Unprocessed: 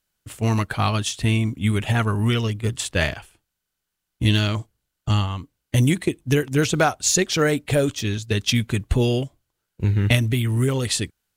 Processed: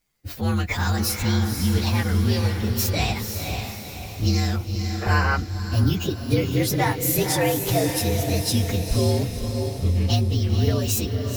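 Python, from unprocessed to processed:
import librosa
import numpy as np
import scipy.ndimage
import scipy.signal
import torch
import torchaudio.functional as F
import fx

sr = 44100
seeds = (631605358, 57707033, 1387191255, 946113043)

p1 = fx.partial_stretch(x, sr, pct=118)
p2 = fx.over_compress(p1, sr, threshold_db=-32.0, ratio=-1.0)
p3 = p1 + (p2 * 10.0 ** (-1.0 / 20.0))
p4 = fx.echo_diffused(p3, sr, ms=512, feedback_pct=49, wet_db=-5)
p5 = fx.spec_box(p4, sr, start_s=5.02, length_s=0.35, low_hz=360.0, high_hz=3100.0, gain_db=11)
y = p5 * 10.0 ** (-2.0 / 20.0)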